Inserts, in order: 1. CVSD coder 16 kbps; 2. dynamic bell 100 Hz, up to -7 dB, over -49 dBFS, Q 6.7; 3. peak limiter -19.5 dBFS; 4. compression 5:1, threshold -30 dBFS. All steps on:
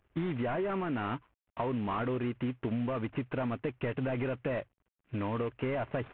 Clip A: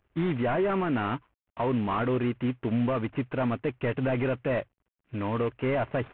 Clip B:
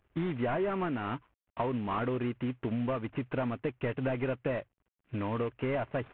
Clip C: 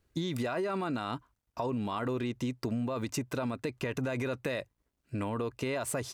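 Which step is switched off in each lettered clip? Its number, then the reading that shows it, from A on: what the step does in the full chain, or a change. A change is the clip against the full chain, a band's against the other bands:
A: 4, crest factor change -4.0 dB; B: 3, mean gain reduction 3.0 dB; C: 1, crest factor change +1.5 dB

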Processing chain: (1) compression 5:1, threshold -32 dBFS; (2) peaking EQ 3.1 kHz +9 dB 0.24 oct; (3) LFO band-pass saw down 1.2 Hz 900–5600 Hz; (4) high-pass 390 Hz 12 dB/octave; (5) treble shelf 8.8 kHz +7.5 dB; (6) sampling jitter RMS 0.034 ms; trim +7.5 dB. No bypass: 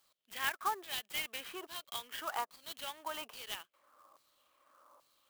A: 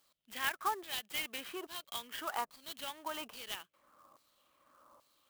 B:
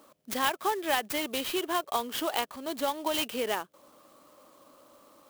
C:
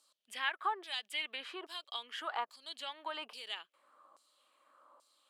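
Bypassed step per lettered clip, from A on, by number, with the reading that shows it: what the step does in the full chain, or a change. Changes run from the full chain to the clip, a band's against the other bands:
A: 4, 250 Hz band +4.5 dB; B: 3, 250 Hz band +12.0 dB; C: 6, 8 kHz band -11.0 dB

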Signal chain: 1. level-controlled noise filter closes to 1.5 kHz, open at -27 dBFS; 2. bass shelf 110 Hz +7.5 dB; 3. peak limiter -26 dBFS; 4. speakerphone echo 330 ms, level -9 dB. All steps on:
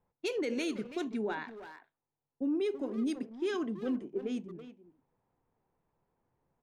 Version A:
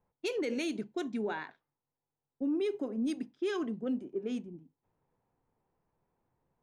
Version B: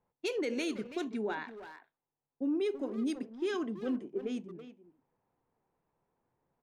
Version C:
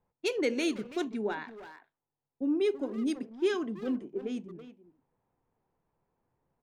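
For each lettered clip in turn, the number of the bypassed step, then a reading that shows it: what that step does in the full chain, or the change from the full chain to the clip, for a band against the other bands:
4, echo-to-direct -16.0 dB to none; 2, 125 Hz band -2.0 dB; 3, crest factor change +4.0 dB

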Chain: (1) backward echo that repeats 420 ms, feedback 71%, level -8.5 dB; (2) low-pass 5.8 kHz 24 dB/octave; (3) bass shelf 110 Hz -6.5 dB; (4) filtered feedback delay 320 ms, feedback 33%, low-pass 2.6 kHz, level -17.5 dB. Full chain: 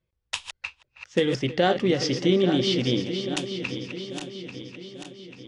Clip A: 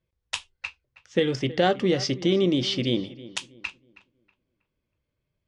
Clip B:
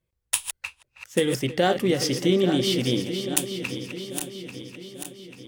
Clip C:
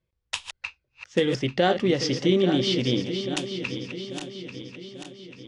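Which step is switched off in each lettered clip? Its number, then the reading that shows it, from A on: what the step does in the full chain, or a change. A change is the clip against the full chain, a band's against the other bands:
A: 1, momentary loudness spread change -3 LU; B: 2, 8 kHz band +10.5 dB; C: 4, echo-to-direct -18.5 dB to none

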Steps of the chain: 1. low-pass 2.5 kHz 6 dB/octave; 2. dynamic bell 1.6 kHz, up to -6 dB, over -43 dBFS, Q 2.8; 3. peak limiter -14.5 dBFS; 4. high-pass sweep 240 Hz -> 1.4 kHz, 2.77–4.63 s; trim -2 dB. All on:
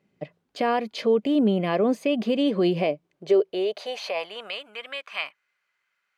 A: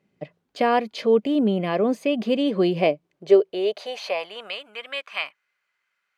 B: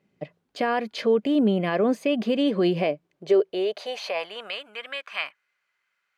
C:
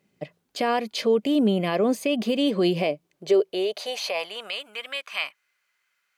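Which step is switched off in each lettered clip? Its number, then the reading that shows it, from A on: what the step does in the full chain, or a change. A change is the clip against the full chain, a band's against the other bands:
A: 3, crest factor change +4.0 dB; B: 2, 2 kHz band +1.5 dB; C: 1, 4 kHz band +4.0 dB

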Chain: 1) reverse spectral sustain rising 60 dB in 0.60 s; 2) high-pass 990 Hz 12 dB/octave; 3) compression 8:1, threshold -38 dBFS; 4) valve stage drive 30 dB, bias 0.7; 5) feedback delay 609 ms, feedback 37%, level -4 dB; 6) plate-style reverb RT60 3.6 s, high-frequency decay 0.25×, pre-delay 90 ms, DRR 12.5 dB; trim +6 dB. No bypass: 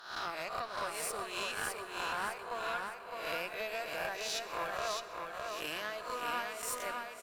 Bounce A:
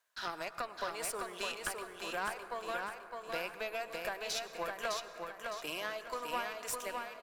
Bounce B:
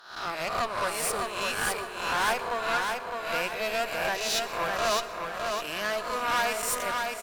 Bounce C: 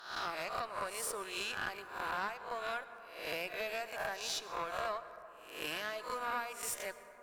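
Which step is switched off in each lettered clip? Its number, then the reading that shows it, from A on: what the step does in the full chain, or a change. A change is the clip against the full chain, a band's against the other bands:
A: 1, 250 Hz band +2.0 dB; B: 3, mean gain reduction 9.0 dB; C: 5, echo-to-direct -2.5 dB to -12.5 dB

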